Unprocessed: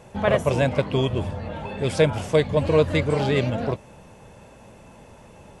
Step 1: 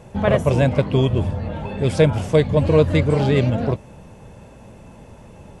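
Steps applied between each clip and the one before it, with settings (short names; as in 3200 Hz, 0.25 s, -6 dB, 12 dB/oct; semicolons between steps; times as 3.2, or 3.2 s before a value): low shelf 370 Hz +7.5 dB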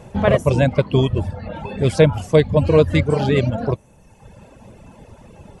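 reverb removal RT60 1.2 s; gain +2.5 dB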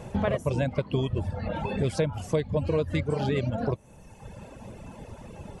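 compressor 4:1, threshold -25 dBFS, peak gain reduction 15 dB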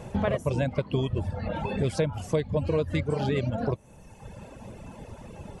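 nothing audible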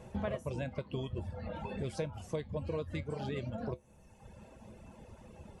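resonator 72 Hz, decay 0.16 s, harmonics odd, mix 60%; gain -5.5 dB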